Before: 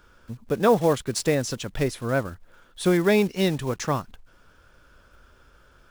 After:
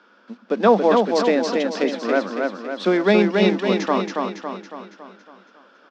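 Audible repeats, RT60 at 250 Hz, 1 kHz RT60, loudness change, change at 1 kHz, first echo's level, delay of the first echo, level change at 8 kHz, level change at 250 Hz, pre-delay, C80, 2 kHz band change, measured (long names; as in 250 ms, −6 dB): 6, no reverb audible, no reverb audible, +4.5 dB, +7.0 dB, −3.5 dB, 278 ms, can't be measured, +5.0 dB, no reverb audible, no reverb audible, +5.5 dB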